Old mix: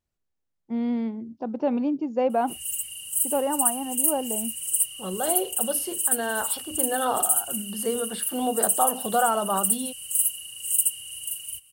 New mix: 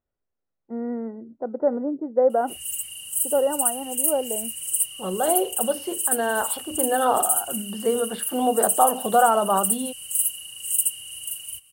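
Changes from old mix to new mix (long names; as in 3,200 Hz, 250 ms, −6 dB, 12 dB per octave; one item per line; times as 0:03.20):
first voice: add Chebyshev low-pass with heavy ripple 2,000 Hz, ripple 9 dB
second voice: add high-frequency loss of the air 140 metres
master: add parametric band 660 Hz +6 dB 2.8 octaves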